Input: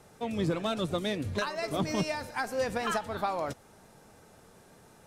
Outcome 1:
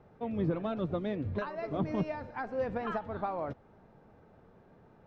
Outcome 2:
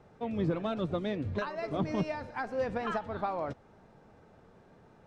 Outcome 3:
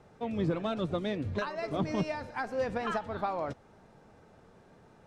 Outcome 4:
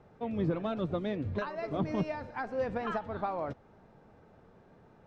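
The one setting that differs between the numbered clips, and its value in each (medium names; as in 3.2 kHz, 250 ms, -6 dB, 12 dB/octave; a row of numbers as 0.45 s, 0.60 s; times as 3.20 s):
tape spacing loss, at 10 kHz: 46 dB, 28 dB, 20 dB, 37 dB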